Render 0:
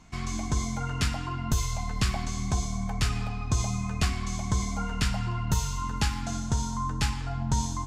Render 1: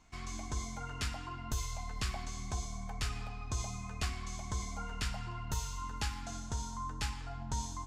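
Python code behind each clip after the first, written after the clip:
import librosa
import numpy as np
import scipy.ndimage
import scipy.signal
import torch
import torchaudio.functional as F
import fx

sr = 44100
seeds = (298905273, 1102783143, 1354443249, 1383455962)

y = fx.peak_eq(x, sr, hz=160.0, db=-8.0, octaves=1.3)
y = y * librosa.db_to_amplitude(-8.0)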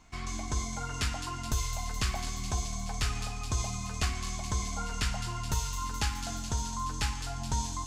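y = fx.echo_wet_highpass(x, sr, ms=212, feedback_pct=74, hz=3600.0, wet_db=-6)
y = y * librosa.db_to_amplitude(5.5)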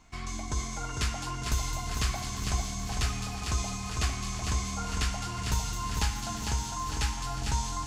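y = fx.echo_feedback(x, sr, ms=452, feedback_pct=57, wet_db=-5.0)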